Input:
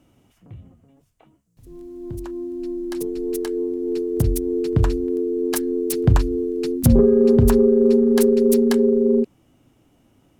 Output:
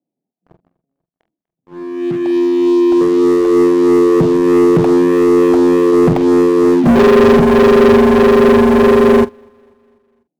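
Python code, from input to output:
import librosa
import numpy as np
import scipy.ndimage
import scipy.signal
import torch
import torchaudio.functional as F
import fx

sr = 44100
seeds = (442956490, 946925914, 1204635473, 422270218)

p1 = scipy.signal.sosfilt(scipy.signal.ellip(3, 1.0, 40, [160.0, 790.0], 'bandpass', fs=sr, output='sos'), x)
p2 = fx.leveller(p1, sr, passes=5)
p3 = fx.doubler(p2, sr, ms=46.0, db=-12.0)
p4 = p3 + fx.echo_feedback(p3, sr, ms=246, feedback_pct=56, wet_db=-24.0, dry=0)
y = fx.upward_expand(p4, sr, threshold_db=-28.0, expansion=1.5)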